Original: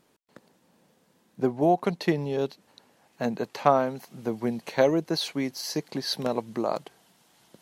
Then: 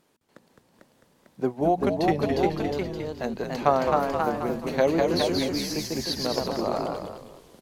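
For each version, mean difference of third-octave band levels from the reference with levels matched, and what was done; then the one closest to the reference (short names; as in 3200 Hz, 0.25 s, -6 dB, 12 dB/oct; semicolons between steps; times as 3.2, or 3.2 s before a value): 8.0 dB: notches 60/120/180/240 Hz; echoes that change speed 0.468 s, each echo +1 st, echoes 2; frequency-shifting echo 0.211 s, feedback 35%, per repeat -73 Hz, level -6.5 dB; gain -1 dB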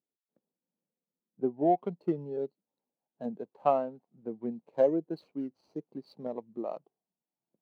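12.0 dB: median filter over 25 samples; HPF 140 Hz 6 dB/oct; spectral expander 1.5:1; gain -4.5 dB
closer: first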